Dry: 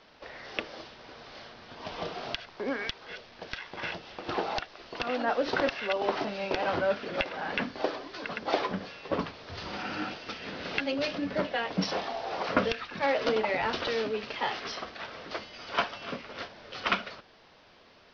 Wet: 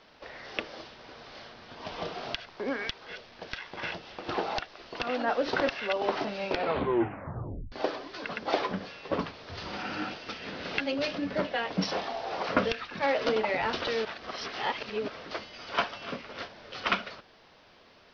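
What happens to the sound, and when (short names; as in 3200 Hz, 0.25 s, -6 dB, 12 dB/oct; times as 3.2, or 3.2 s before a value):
6.51 tape stop 1.21 s
14.05–15.08 reverse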